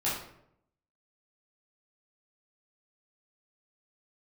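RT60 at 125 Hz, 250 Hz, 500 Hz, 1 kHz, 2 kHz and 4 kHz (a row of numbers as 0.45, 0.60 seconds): 0.95, 0.85, 0.80, 0.65, 0.60, 0.45 seconds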